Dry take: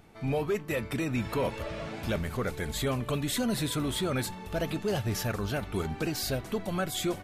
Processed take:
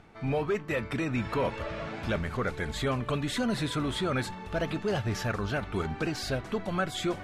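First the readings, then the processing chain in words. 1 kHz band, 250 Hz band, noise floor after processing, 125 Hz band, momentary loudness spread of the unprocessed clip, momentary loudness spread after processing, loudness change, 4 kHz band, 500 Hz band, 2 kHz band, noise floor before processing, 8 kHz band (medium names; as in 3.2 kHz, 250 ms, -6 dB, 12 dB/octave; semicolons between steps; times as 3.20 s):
+2.5 dB, 0.0 dB, -43 dBFS, 0.0 dB, 4 LU, 3 LU, +0.5 dB, -1.0 dB, +0.5 dB, +2.5 dB, -44 dBFS, -6.0 dB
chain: peaking EQ 1.4 kHz +4.5 dB 1.3 oct; reverse; upward compressor, threshold -39 dBFS; reverse; distance through air 62 m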